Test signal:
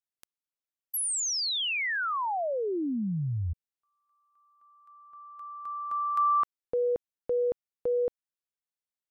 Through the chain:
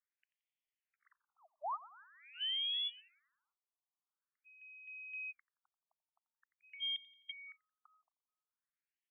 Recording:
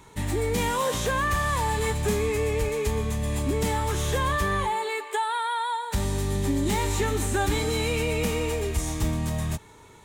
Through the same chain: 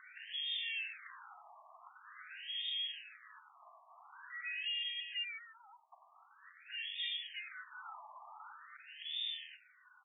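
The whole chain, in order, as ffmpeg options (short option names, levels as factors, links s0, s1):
-af "acompressor=threshold=0.00708:ratio=3:release=499:detection=rms,asoftclip=type=hard:threshold=0.0106,aecho=1:1:87|174|261|348|435:0.126|0.0705|0.0395|0.0221|0.0124,lowpass=f=3100:t=q:w=0.5098,lowpass=f=3100:t=q:w=0.6013,lowpass=f=3100:t=q:w=0.9,lowpass=f=3100:t=q:w=2.563,afreqshift=-3700,afftfilt=real='re*between(b*sr/1024,850*pow(2600/850,0.5+0.5*sin(2*PI*0.46*pts/sr))/1.41,850*pow(2600/850,0.5+0.5*sin(2*PI*0.46*pts/sr))*1.41)':imag='im*between(b*sr/1024,850*pow(2600/850,0.5+0.5*sin(2*PI*0.46*pts/sr))/1.41,850*pow(2600/850,0.5+0.5*sin(2*PI*0.46*pts/sr))*1.41)':win_size=1024:overlap=0.75,volume=1.68"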